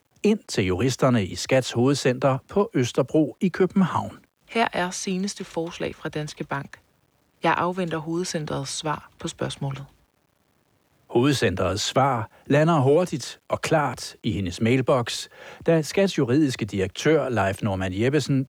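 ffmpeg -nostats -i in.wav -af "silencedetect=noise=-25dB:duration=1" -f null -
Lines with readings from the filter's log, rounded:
silence_start: 9.74
silence_end: 11.15 | silence_duration: 1.41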